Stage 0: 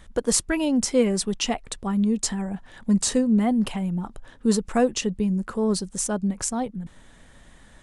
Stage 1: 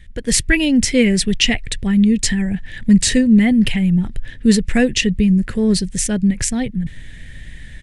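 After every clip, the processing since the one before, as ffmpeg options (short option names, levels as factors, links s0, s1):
-af "firequalizer=gain_entry='entry(130,0);entry(200,-9);entry(830,-23);entry(1200,-25);entry(1800,-1);entry(3000,-5);entry(6200,-12)':delay=0.05:min_phase=1,dynaudnorm=f=110:g=5:m=3.35,volume=2.37"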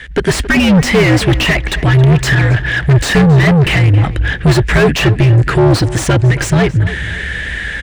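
-filter_complex "[0:a]afreqshift=-72,asplit=2[s0][s1];[s1]highpass=f=720:p=1,volume=56.2,asoftclip=type=tanh:threshold=0.944[s2];[s0][s2]amix=inputs=2:normalize=0,lowpass=f=1200:p=1,volume=0.501,asplit=2[s3][s4];[s4]adelay=272,lowpass=f=3200:p=1,volume=0.188,asplit=2[s5][s6];[s6]adelay=272,lowpass=f=3200:p=1,volume=0.34,asplit=2[s7][s8];[s8]adelay=272,lowpass=f=3200:p=1,volume=0.34[s9];[s3][s5][s7][s9]amix=inputs=4:normalize=0"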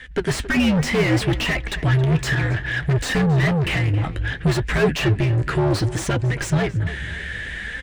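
-af "flanger=delay=3.8:depth=9.7:regen=60:speed=0.64:shape=sinusoidal,volume=0.562"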